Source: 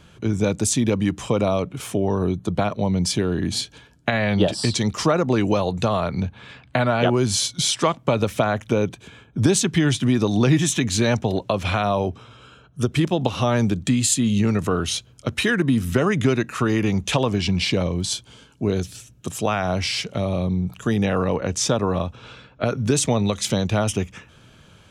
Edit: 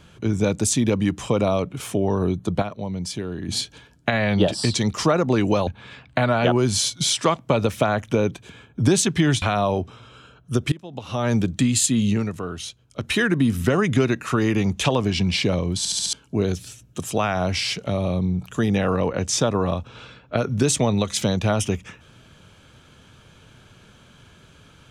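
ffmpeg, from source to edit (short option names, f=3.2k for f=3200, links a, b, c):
-filter_complex "[0:a]asplit=13[a][b][c][d][e][f][g][h][i][j][k][l][m];[a]atrim=end=2.622[n];[b]atrim=start=2.618:end=3.492,asetpts=PTS-STARTPTS,volume=-7.5dB[o];[c]atrim=start=3.488:end=5.672[p];[d]atrim=start=6.248:end=10.002[q];[e]atrim=start=11.698:end=13,asetpts=PTS-STARTPTS,afade=t=out:st=1.298:d=0.004:c=hsin:silence=0.0944061[r];[f]atrim=start=13:end=14.62,asetpts=PTS-STARTPTS,afade=t=in:d=0.63:c=qua:silence=0.0944061,afade=t=out:st=1.33:d=0.29:silence=0.375837[s];[g]atrim=start=14.62:end=15.16,asetpts=PTS-STARTPTS,volume=-8.5dB[t];[h]atrim=start=15.16:end=18.132,asetpts=PTS-STARTPTS,afade=t=in:d=0.29:silence=0.375837[u];[i]atrim=start=18.058:end=18.132[v];[j]atrim=start=18.058:end=18.132[w];[k]atrim=start=18.058:end=18.132[x];[l]atrim=start=18.058:end=18.132[y];[m]atrim=start=18.408[z];[n][o]acrossfade=d=0.004:c1=hsin:c2=hsin[aa];[aa][p]acrossfade=d=0.004:c1=hsin:c2=hsin[ab];[ab][q]acrossfade=d=0.004:c1=hsin:c2=hsin[ac];[r][s][t][u]concat=n=4:v=0:a=1[ad];[ac][ad]acrossfade=d=0.004:c1=hsin:c2=hsin[ae];[ae][v]acrossfade=d=0.004:c1=hsin:c2=hsin[af];[af][w]acrossfade=d=0.004:c1=hsin:c2=hsin[ag];[ag][x]acrossfade=d=0.004:c1=hsin:c2=hsin[ah];[ah][y]acrossfade=d=0.004:c1=hsin:c2=hsin[ai];[ai][z]acrossfade=d=0.004:c1=hsin:c2=hsin"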